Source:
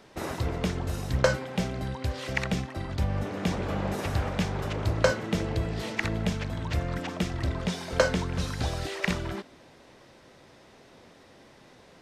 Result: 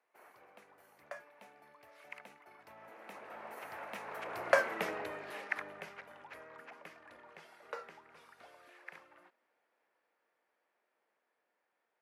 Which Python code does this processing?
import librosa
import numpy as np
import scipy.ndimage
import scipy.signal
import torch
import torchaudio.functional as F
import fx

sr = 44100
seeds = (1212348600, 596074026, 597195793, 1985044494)

y = fx.doppler_pass(x, sr, speed_mps=36, closest_m=12.0, pass_at_s=4.76)
y = scipy.signal.sosfilt(scipy.signal.butter(2, 660.0, 'highpass', fs=sr, output='sos'), y)
y = fx.band_shelf(y, sr, hz=5100.0, db=-12.0, octaves=1.7)
y = y * 10.0 ** (1.5 / 20.0)